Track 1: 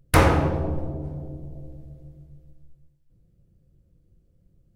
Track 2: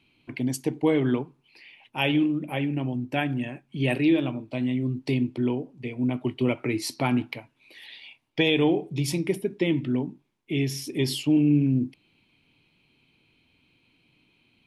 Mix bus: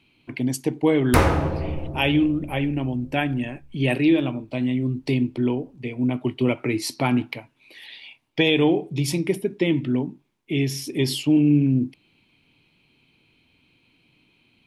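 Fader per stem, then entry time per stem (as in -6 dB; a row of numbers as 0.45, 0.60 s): -1.0, +3.0 dB; 1.00, 0.00 s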